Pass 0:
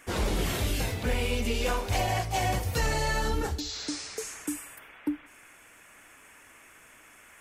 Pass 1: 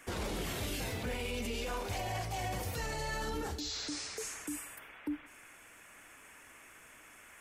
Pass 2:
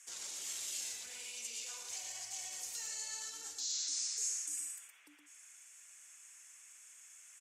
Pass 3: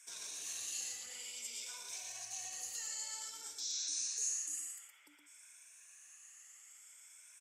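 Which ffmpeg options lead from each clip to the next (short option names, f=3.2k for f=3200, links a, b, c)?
-filter_complex "[0:a]acrossover=split=140[a][b];[a]acompressor=threshold=-39dB:ratio=6[c];[b]alimiter=level_in=4.5dB:limit=-24dB:level=0:latency=1:release=21,volume=-4.5dB[d];[c][d]amix=inputs=2:normalize=0,volume=-2dB"
-af "bandpass=f=6.9k:t=q:w=3.1:csg=0,aecho=1:1:117:0.531,volume=8.5dB"
-af "afftfilt=real='re*pow(10,9/40*sin(2*PI*(1.6*log(max(b,1)*sr/1024/100)/log(2)-(0.55)*(pts-256)/sr)))':imag='im*pow(10,9/40*sin(2*PI*(1.6*log(max(b,1)*sr/1024/100)/log(2)-(0.55)*(pts-256)/sr)))':win_size=1024:overlap=0.75,volume=-2dB"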